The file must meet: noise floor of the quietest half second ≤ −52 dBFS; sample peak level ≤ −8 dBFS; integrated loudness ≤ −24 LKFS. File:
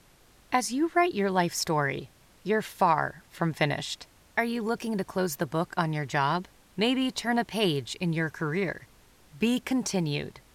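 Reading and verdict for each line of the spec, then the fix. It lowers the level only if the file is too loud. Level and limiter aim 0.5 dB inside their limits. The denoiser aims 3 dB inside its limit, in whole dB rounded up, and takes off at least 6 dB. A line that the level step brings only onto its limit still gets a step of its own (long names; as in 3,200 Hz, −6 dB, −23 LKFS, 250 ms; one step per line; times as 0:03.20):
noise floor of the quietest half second −58 dBFS: in spec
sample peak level −11.0 dBFS: in spec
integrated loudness −28.5 LKFS: in spec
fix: no processing needed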